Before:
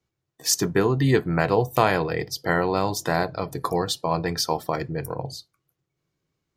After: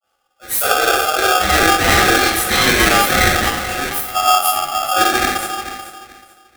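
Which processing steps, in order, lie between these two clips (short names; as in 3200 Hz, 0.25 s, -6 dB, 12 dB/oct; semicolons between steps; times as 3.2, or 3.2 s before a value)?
inharmonic rescaling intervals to 124%; 3.41–4.14 pre-emphasis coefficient 0.8; 3.84–4.91 spectral gain 320–9900 Hz -25 dB; 2.18–2.77 tilt shelf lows -7 dB; limiter -22 dBFS, peak gain reduction 11.5 dB; 0.74–1.47 negative-ratio compressor -33 dBFS, ratio -1; dispersion highs, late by 42 ms, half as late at 500 Hz; frequency shift +110 Hz; thinning echo 0.435 s, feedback 26%, high-pass 150 Hz, level -12 dB; shoebox room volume 260 m³, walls mixed, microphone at 4.1 m; polarity switched at an audio rate 1000 Hz; gain +5.5 dB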